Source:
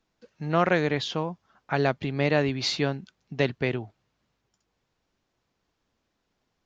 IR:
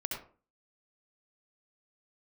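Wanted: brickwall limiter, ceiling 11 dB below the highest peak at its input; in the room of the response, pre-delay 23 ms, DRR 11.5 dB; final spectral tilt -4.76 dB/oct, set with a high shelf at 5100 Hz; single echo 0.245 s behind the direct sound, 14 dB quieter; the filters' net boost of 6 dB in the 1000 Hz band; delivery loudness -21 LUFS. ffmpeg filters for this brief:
-filter_complex "[0:a]equalizer=f=1k:t=o:g=8,highshelf=f=5.1k:g=6,alimiter=limit=-15.5dB:level=0:latency=1,aecho=1:1:245:0.2,asplit=2[a][b];[1:a]atrim=start_sample=2205,adelay=23[c];[b][c]afir=irnorm=-1:irlink=0,volume=-14dB[d];[a][d]amix=inputs=2:normalize=0,volume=8dB"

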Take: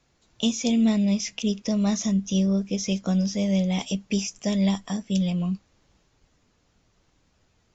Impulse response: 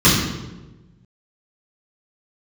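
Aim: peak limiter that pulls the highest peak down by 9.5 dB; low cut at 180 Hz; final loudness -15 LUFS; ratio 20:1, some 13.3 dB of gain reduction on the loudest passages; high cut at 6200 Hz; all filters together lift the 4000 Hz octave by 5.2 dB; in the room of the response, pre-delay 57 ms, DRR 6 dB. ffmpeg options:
-filter_complex "[0:a]highpass=180,lowpass=6.2k,equalizer=f=4k:t=o:g=8,acompressor=threshold=-31dB:ratio=20,alimiter=level_in=2.5dB:limit=-24dB:level=0:latency=1,volume=-2.5dB,asplit=2[a][b];[1:a]atrim=start_sample=2205,adelay=57[c];[b][c]afir=irnorm=-1:irlink=0,volume=-30dB[d];[a][d]amix=inputs=2:normalize=0,volume=16.5dB"

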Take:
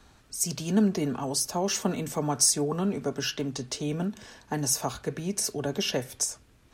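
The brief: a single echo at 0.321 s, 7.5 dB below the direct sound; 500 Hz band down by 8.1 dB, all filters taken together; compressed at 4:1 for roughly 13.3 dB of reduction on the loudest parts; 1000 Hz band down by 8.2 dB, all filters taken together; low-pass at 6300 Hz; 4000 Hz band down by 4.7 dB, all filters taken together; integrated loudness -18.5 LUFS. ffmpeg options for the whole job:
-af "lowpass=6.3k,equalizer=f=500:t=o:g=-9,equalizer=f=1k:t=o:g=-7,equalizer=f=4k:t=o:g=-5,acompressor=threshold=-37dB:ratio=4,aecho=1:1:321:0.422,volume=21dB"

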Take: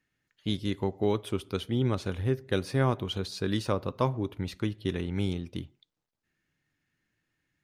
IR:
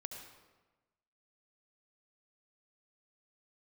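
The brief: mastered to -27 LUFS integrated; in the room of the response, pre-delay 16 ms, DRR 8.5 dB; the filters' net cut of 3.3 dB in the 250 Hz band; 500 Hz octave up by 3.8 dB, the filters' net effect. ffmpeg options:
-filter_complex "[0:a]equalizer=f=250:t=o:g=-7.5,equalizer=f=500:t=o:g=7.5,asplit=2[a][b];[1:a]atrim=start_sample=2205,adelay=16[c];[b][c]afir=irnorm=-1:irlink=0,volume=-6dB[d];[a][d]amix=inputs=2:normalize=0,volume=2.5dB"

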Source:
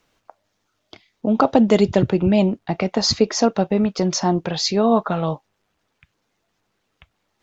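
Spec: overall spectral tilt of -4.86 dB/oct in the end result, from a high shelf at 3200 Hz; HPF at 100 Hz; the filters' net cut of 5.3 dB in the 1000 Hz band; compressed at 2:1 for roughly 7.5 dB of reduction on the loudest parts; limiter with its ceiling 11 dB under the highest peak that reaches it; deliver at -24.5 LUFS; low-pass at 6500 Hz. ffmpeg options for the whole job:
-af "highpass=100,lowpass=6.5k,equalizer=f=1k:t=o:g=-8.5,highshelf=f=3.2k:g=5,acompressor=threshold=-25dB:ratio=2,volume=5.5dB,alimiter=limit=-15dB:level=0:latency=1"

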